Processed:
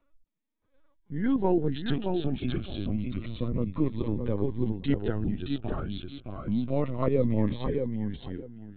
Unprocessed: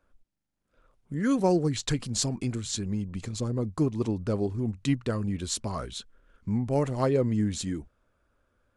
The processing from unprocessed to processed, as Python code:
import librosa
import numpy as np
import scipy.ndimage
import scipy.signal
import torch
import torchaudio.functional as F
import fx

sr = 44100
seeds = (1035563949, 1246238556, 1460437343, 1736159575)

y = fx.echo_feedback(x, sr, ms=620, feedback_pct=22, wet_db=-5)
y = fx.lpc_vocoder(y, sr, seeds[0], excitation='pitch_kept', order=16)
y = fx.notch_cascade(y, sr, direction='falling', hz=0.29)